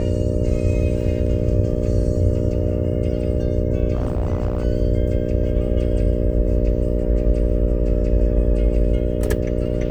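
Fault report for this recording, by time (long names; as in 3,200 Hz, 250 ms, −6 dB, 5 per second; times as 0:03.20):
mains buzz 60 Hz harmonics 10 −23 dBFS
0:03.95–0:04.65: clipping −16 dBFS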